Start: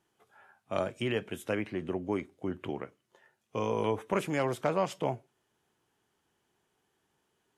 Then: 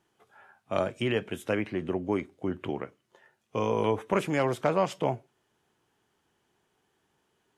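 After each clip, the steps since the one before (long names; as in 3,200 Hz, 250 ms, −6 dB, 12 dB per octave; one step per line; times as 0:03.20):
high-shelf EQ 8,300 Hz −5.5 dB
level +3.5 dB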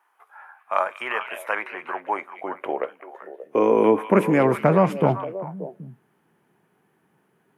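flat-topped bell 4,900 Hz −12 dB
high-pass filter sweep 980 Hz → 160 Hz, 0:01.90–0:04.66
echo through a band-pass that steps 194 ms, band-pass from 3,200 Hz, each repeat −1.4 octaves, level −5 dB
level +6.5 dB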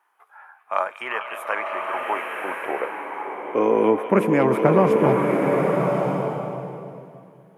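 slow-attack reverb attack 1,180 ms, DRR 1 dB
level −1 dB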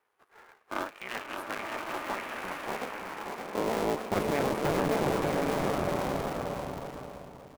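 sub-harmonics by changed cycles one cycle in 2, muted
soft clipping −13.5 dBFS, distortion −14 dB
on a send: repeating echo 577 ms, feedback 22%, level −6 dB
on the sum: level −6 dB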